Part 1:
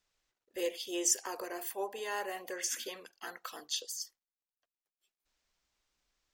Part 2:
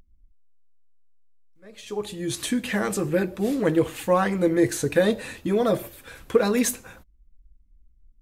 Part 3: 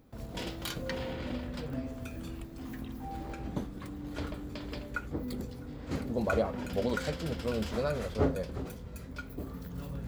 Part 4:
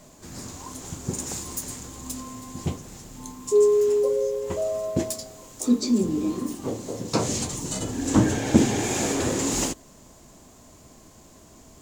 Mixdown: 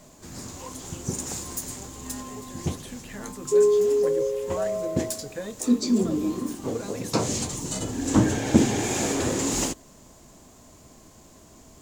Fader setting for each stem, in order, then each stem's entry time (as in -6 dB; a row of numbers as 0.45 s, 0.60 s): -11.5 dB, -15.0 dB, mute, -0.5 dB; 0.00 s, 0.40 s, mute, 0.00 s